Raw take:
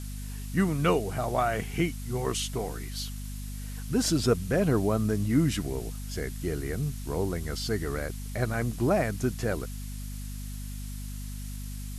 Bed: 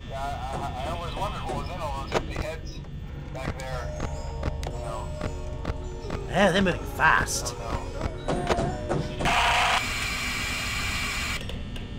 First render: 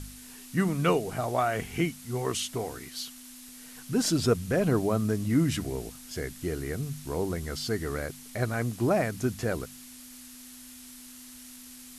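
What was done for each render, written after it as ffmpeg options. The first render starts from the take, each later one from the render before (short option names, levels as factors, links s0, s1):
-af "bandreject=f=50:t=h:w=4,bandreject=f=100:t=h:w=4,bandreject=f=150:t=h:w=4,bandreject=f=200:t=h:w=4"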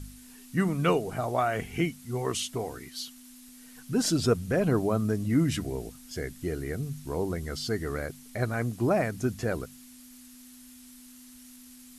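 -af "afftdn=nr=6:nf=-47"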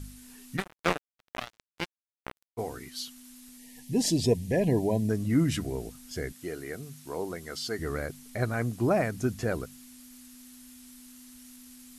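-filter_complex "[0:a]asplit=3[s0][s1][s2];[s0]afade=t=out:st=0.56:d=0.02[s3];[s1]acrusher=bits=2:mix=0:aa=0.5,afade=t=in:st=0.56:d=0.02,afade=t=out:st=2.57:d=0.02[s4];[s2]afade=t=in:st=2.57:d=0.02[s5];[s3][s4][s5]amix=inputs=3:normalize=0,asplit=3[s6][s7][s8];[s6]afade=t=out:st=3.57:d=0.02[s9];[s7]asuperstop=centerf=1300:order=20:qfactor=2,afade=t=in:st=3.57:d=0.02,afade=t=out:st=5.09:d=0.02[s10];[s8]afade=t=in:st=5.09:d=0.02[s11];[s9][s10][s11]amix=inputs=3:normalize=0,asettb=1/sr,asplit=3[s12][s13][s14];[s12]atrim=end=6.324[s15];[s13]atrim=start=6.32:end=7.79,asetpts=PTS-STARTPTS,afade=t=in:d=0.004:c=qsin,afade=t=out:st=1.466:d=0.004:c=qsin,highpass=f=430:p=1[s16];[s14]atrim=start=7.786[s17];[s15][s16]acrossfade=d=0.004:c1=hsin:c2=qsin[s18];[s18][s17]acrossfade=d=0.004:c1=qsin:c2=hsin"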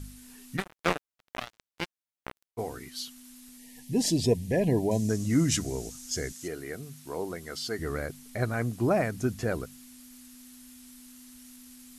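-filter_complex "[0:a]asettb=1/sr,asplit=3[s0][s1][s2];[s0]atrim=end=4.914[s3];[s1]atrim=start=4.91:end=6.48,asetpts=PTS-STARTPTS,afade=t=in:d=0.004:c=qsin,afade=t=out:st=1.566:d=0.004:c=qsin,equalizer=f=6500:w=1.3:g=13.5[s4];[s2]atrim=start=6.476[s5];[s3][s4]acrossfade=d=0.004:c1=hsin:c2=qsin[s6];[s6][s5]acrossfade=d=0.004:c1=qsin:c2=hsin"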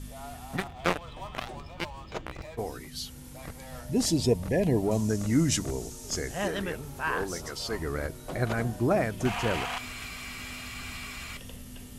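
-filter_complex "[1:a]volume=0.282[s0];[0:a][s0]amix=inputs=2:normalize=0"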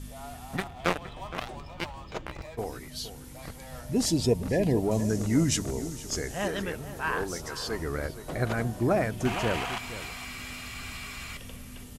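-filter_complex "[0:a]asplit=2[s0][s1];[s1]adelay=466.5,volume=0.224,highshelf=f=4000:g=-10.5[s2];[s0][s2]amix=inputs=2:normalize=0"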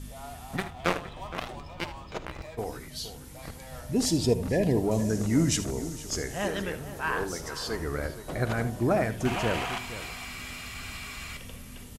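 -af "aecho=1:1:54|78:0.15|0.188"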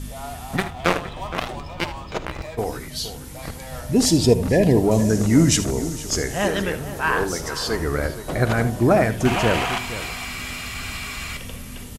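-af "volume=2.66,alimiter=limit=0.708:level=0:latency=1"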